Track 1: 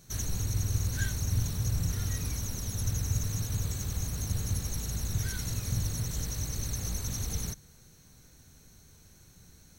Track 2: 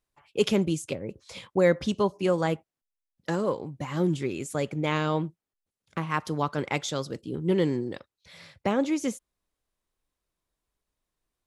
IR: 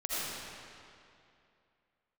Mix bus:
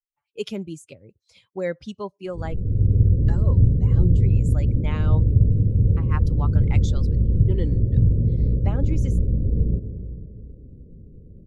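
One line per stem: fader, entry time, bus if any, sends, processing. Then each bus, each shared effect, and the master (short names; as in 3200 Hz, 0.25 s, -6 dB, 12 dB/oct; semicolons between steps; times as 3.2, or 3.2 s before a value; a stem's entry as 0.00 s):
+3.0 dB, 2.25 s, send -12.5 dB, steep low-pass 550 Hz 72 dB/oct; AGC gain up to 9 dB
-4.5 dB, 0.00 s, no send, per-bin expansion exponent 1.5; high shelf 9400 Hz -3 dB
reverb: on, RT60 2.6 s, pre-delay 40 ms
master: dry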